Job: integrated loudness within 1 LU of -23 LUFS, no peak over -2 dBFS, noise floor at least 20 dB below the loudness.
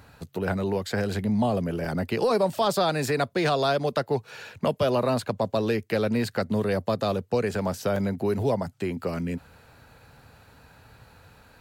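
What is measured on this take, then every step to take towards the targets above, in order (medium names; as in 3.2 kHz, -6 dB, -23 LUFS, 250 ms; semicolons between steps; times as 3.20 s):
dropouts 2; longest dropout 2.7 ms; loudness -26.5 LUFS; peak level -13.5 dBFS; loudness target -23.0 LUFS
-> interpolate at 1.85/7.96 s, 2.7 ms; trim +3.5 dB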